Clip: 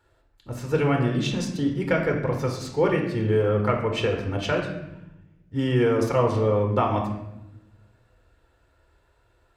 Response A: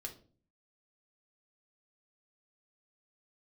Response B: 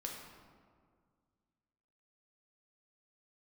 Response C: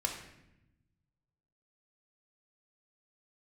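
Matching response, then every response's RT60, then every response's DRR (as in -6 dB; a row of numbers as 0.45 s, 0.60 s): C; 0.45 s, 1.9 s, 0.85 s; 2.5 dB, -0.5 dB, 1.5 dB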